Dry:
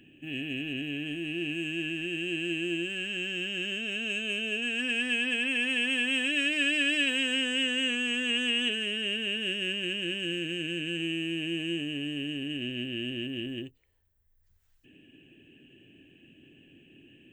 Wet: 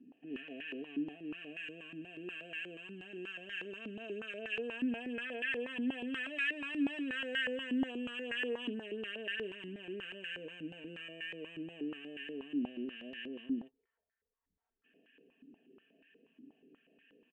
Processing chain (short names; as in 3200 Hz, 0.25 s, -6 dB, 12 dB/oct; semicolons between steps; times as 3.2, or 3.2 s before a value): comb 4.4 ms, depth 88%; stepped band-pass 8.3 Hz 280–1700 Hz; gain +2 dB